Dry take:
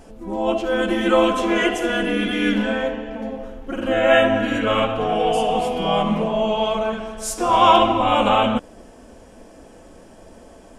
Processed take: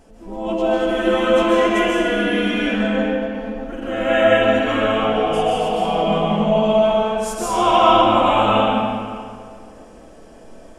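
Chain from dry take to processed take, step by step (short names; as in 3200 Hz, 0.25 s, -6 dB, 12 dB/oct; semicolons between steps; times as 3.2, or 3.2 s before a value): digital reverb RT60 2.1 s, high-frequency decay 0.7×, pre-delay 0.1 s, DRR -6 dB; gain -5.5 dB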